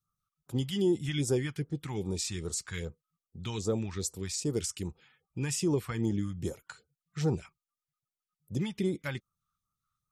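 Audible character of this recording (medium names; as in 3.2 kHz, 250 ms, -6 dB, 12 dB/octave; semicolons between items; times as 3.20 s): phasing stages 2, 2.5 Hz, lowest notch 410–2300 Hz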